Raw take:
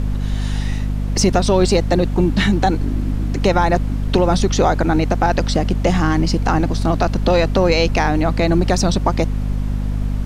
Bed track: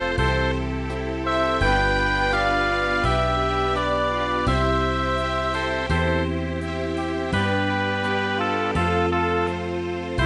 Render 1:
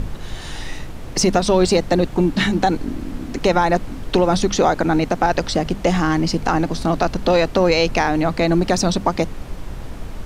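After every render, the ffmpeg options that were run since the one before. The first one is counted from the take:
-af "bandreject=f=50:t=h:w=6,bandreject=f=100:t=h:w=6,bandreject=f=150:t=h:w=6,bandreject=f=200:t=h:w=6,bandreject=f=250:t=h:w=6"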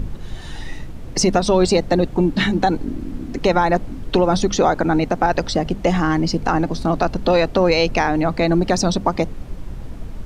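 -af "afftdn=nr=7:nf=-32"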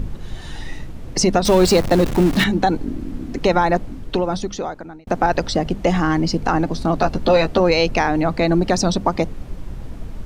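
-filter_complex "[0:a]asettb=1/sr,asplit=3[a][b][c];[a]atrim=end=1.454[d];[b]atrim=start=1.45:end=2.44,asetpts=PTS-STARTPTS,afade=t=in:d=0.004:c=qsin,afade=t=out:st=0.986:d=0.004:c=qsin,aeval=exprs='val(0)+0.5*0.0944*sgn(val(0))':c=same[e];[c]atrim=start=2.436[f];[d][e]acrossfade=d=0.004:c1=hsin:c2=qsin[g];[g][f]acrossfade=d=0.004:c1=qsin:c2=hsin,asettb=1/sr,asplit=3[h][i][j];[h]atrim=end=6.984[k];[i]atrim=start=6.98:end=7.6,asetpts=PTS-STARTPTS,afade=t=in:d=0.004:c=qsin,afade=t=out:st=0.616:d=0.004:c=qsin,asplit=2[l][m];[m]adelay=13,volume=-6dB[n];[l][n]amix=inputs=2:normalize=0,atrim=end_sample=27342[o];[j]atrim=start=7.596[p];[k][o]acrossfade=d=0.004:c1=hsin:c2=qsin[q];[q][p]acrossfade=d=0.004:c1=qsin:c2=hsin,asplit=2[r][s];[r]atrim=end=5.07,asetpts=PTS-STARTPTS,afade=t=out:st=3.67:d=1.4[t];[s]atrim=start=5.07,asetpts=PTS-STARTPTS,afade=t=in:d=0.004:c=hsin[u];[t][u]concat=n=2:v=0:a=1"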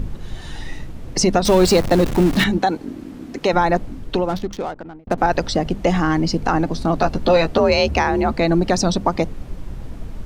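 -filter_complex "[0:a]asettb=1/sr,asplit=3[a][b][c];[a]atrim=end=2.584[d];[b]atrim=start=2.58:end=3.53,asetpts=PTS-STARTPTS,afade=t=in:d=0.004:c=qsin,afade=t=out:st=0.946:d=0.004:c=qsin,highpass=f=290:p=1[e];[c]atrim=start=3.526[f];[d][e]acrossfade=d=0.004:c1=hsin:c2=qsin[g];[g][f]acrossfade=d=0.004:c1=qsin:c2=hsin,asettb=1/sr,asplit=3[h][i][j];[h]atrim=end=4.284[k];[i]atrim=start=4.28:end=5.18,asetpts=PTS-STARTPTS,afade=t=in:d=0.004:c=qsin,afade=t=out:st=0.896:d=0.004:c=qsin,adynamicsmooth=sensitivity=6.5:basefreq=760[l];[j]atrim=start=5.176[m];[k][l]acrossfade=d=0.004:c1=hsin:c2=qsin[n];[n][m]acrossfade=d=0.004:c1=qsin:c2=hsin,asettb=1/sr,asplit=3[o][p][q];[o]atrim=end=7.584[r];[p]atrim=start=7.58:end=8.32,asetpts=PTS-STARTPTS,afade=t=in:d=0.004:c=qsin,afade=t=out:st=0.736:d=0.004:c=qsin,afreqshift=49[s];[q]atrim=start=8.316[t];[r][s]acrossfade=d=0.004:c1=hsin:c2=qsin[u];[u][t]acrossfade=d=0.004:c1=qsin:c2=hsin"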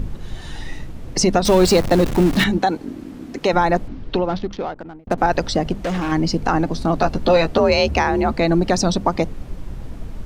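-filter_complex "[0:a]asettb=1/sr,asplit=3[a][b][c];[a]atrim=end=3.884[d];[b]atrim=start=3.88:end=4.76,asetpts=PTS-STARTPTS,afade=t=in:d=0.004:c=qsin,afade=t=out:st=0.876:d=0.004:c=qsin,lowpass=f=5.2k:w=0.5412,lowpass=f=5.2k:w=1.3066[e];[c]atrim=start=4.756[f];[d][e]acrossfade=d=0.004:c1=hsin:c2=qsin[g];[g][f]acrossfade=d=0.004:c1=qsin:c2=hsin,asettb=1/sr,asplit=3[h][i][j];[h]atrim=end=5.724[k];[i]atrim=start=5.72:end=6.12,asetpts=PTS-STARTPTS,afade=t=in:d=0.004:c=qsin,afade=t=out:st=0.396:d=0.004:c=qsin,asoftclip=type=hard:threshold=-19.5dB[l];[j]atrim=start=6.116[m];[k][l]acrossfade=d=0.004:c1=hsin:c2=qsin[n];[n][m]acrossfade=d=0.004:c1=qsin:c2=hsin"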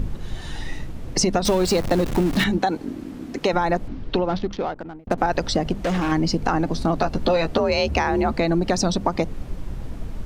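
-af "acompressor=threshold=-16dB:ratio=6"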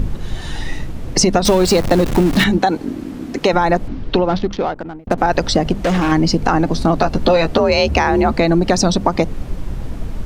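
-af "volume=6.5dB,alimiter=limit=-1dB:level=0:latency=1"

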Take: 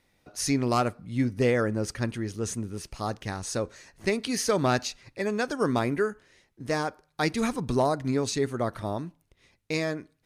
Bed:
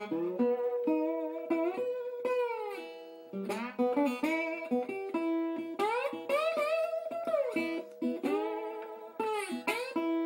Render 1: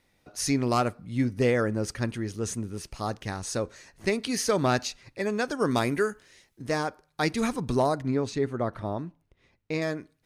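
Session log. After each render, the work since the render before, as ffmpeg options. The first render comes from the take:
-filter_complex "[0:a]asettb=1/sr,asplit=3[a][b][c];[a]atrim=end=5.714[d];[b]atrim=start=5.71:end=6.62,asetpts=PTS-STARTPTS,afade=t=in:d=0.004:c=qsin,afade=t=out:st=0.906:d=0.004:c=qsin,highshelf=f=3k:g=9[e];[c]atrim=start=6.616[f];[d][e]acrossfade=d=0.004:c1=hsin:c2=qsin[g];[g][f]acrossfade=d=0.004:c1=qsin:c2=hsin,asettb=1/sr,asplit=3[h][i][j];[h]atrim=end=8.024[k];[i]atrim=start=8.02:end=9.82,asetpts=PTS-STARTPTS,afade=t=in:d=0.004:c=qsin,afade=t=out:st=1.796:d=0.004:c=qsin,lowpass=f=2k:p=1[l];[j]atrim=start=9.816[m];[k][l]acrossfade=d=0.004:c1=hsin:c2=qsin[n];[n][m]acrossfade=d=0.004:c1=qsin:c2=hsin"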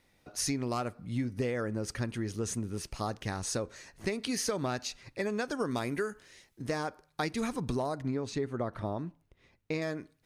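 -af "acompressor=threshold=-29dB:ratio=6"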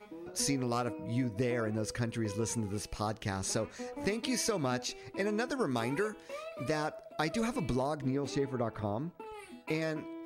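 -filter_complex "[1:a]volume=-13dB[a];[0:a][a]amix=inputs=2:normalize=0"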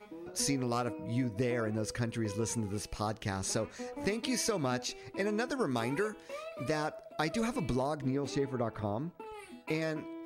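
-af anull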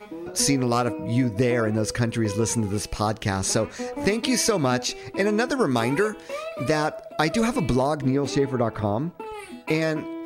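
-af "volume=10.5dB"

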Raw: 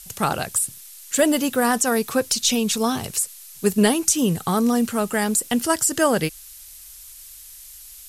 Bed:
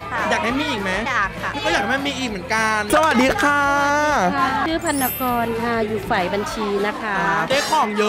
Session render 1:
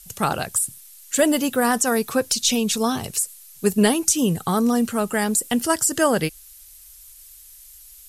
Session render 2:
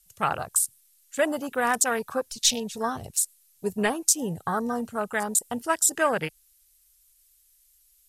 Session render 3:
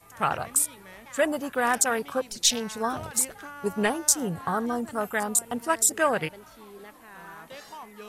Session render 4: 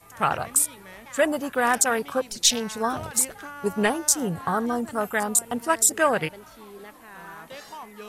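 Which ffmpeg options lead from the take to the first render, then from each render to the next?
-af "afftdn=nr=6:nf=-43"
-af "afwtdn=0.0501,equalizer=f=240:w=0.58:g=-11.5"
-filter_complex "[1:a]volume=-25dB[a];[0:a][a]amix=inputs=2:normalize=0"
-af "volume=2.5dB,alimiter=limit=-3dB:level=0:latency=1"

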